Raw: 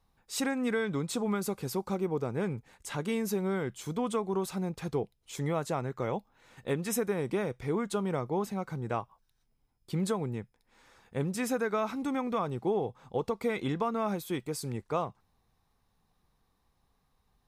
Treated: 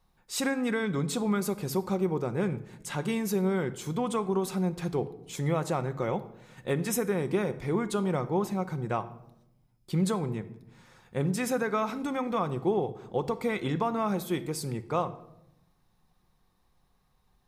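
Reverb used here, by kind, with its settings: shoebox room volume 2700 m³, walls furnished, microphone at 0.95 m; gain +2 dB

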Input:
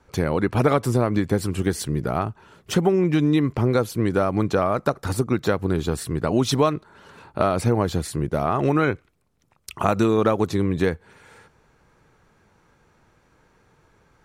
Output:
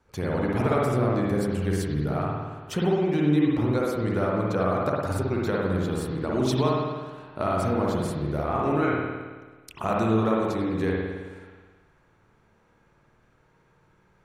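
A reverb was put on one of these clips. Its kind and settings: spring tank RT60 1.4 s, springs 54 ms, chirp 50 ms, DRR -3.5 dB; gain -8.5 dB

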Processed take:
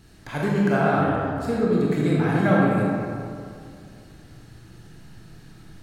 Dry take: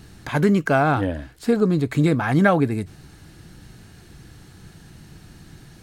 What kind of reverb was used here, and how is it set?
digital reverb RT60 2.4 s, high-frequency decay 0.5×, pre-delay 0 ms, DRR -5 dB; gain -8 dB

